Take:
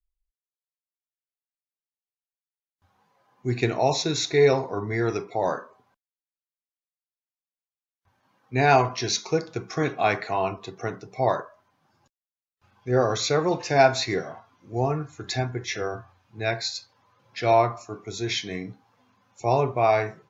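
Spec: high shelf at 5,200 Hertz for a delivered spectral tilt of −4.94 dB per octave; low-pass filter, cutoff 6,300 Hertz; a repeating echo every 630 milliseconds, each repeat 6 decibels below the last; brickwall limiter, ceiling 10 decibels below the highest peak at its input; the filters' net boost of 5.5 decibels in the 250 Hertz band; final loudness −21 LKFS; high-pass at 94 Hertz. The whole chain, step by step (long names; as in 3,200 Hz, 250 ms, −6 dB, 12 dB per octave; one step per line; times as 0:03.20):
high-pass filter 94 Hz
low-pass filter 6,300 Hz
parametric band 250 Hz +8 dB
high-shelf EQ 5,200 Hz −8.5 dB
brickwall limiter −14 dBFS
repeating echo 630 ms, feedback 50%, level −6 dB
level +5.5 dB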